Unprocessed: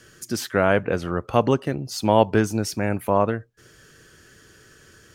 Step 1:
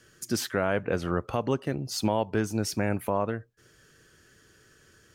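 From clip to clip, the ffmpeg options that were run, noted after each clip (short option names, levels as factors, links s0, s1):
-af "agate=range=0.501:threshold=0.00501:ratio=16:detection=peak,alimiter=limit=0.237:level=0:latency=1:release=406,volume=0.841"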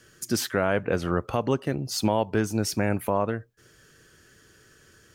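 -af "highshelf=f=12000:g=3,volume=1.33"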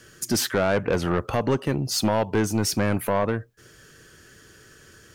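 -af "asoftclip=type=tanh:threshold=0.0944,volume=1.88"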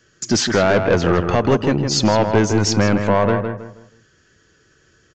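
-filter_complex "[0:a]agate=range=0.224:threshold=0.00501:ratio=16:detection=peak,aresample=16000,aresample=44100,asplit=2[s0][s1];[s1]adelay=160,lowpass=f=2600:p=1,volume=0.501,asplit=2[s2][s3];[s3]adelay=160,lowpass=f=2600:p=1,volume=0.32,asplit=2[s4][s5];[s5]adelay=160,lowpass=f=2600:p=1,volume=0.32,asplit=2[s6][s7];[s7]adelay=160,lowpass=f=2600:p=1,volume=0.32[s8];[s0][s2][s4][s6][s8]amix=inputs=5:normalize=0,volume=2.11"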